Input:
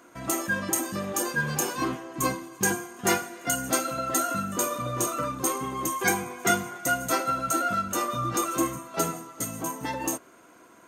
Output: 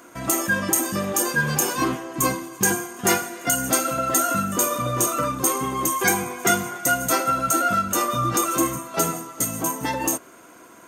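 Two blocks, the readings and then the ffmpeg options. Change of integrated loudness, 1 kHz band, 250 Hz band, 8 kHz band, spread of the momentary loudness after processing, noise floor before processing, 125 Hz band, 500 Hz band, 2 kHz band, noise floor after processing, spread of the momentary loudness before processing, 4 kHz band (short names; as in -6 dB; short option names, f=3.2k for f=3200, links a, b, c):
+5.5 dB, +5.0 dB, +4.5 dB, +6.5 dB, 4 LU, -53 dBFS, +5.5 dB, +4.5 dB, +4.5 dB, -47 dBFS, 5 LU, +5.0 dB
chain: -filter_complex "[0:a]highshelf=f=7k:g=5.5,bandreject=f=4.1k:w=28,asplit=2[a][b];[b]alimiter=limit=-18.5dB:level=0:latency=1:release=130,volume=0dB[c];[a][c]amix=inputs=2:normalize=0"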